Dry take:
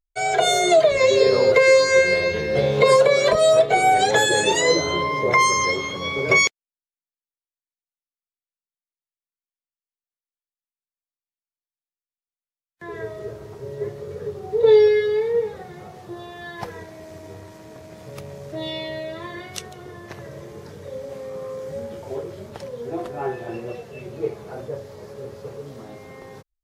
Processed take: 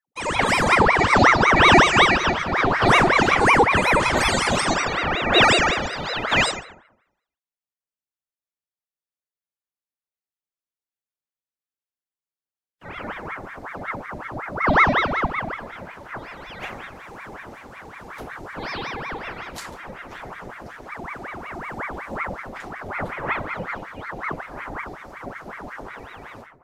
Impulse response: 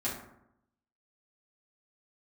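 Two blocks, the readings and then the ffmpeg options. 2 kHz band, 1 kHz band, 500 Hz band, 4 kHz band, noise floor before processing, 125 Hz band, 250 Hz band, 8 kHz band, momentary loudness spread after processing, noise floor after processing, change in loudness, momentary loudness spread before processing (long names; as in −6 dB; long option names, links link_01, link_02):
+4.0 dB, +3.5 dB, −7.5 dB, +1.5 dB, below −85 dBFS, +4.5 dB, +5.5 dB, −4.5 dB, 22 LU, below −85 dBFS, −0.5 dB, 21 LU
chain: -filter_complex "[1:a]atrim=start_sample=2205[link_01];[0:a][link_01]afir=irnorm=-1:irlink=0,aeval=exprs='val(0)*sin(2*PI*960*n/s+960*0.85/5.4*sin(2*PI*5.4*n/s))':channel_layout=same,volume=-3.5dB"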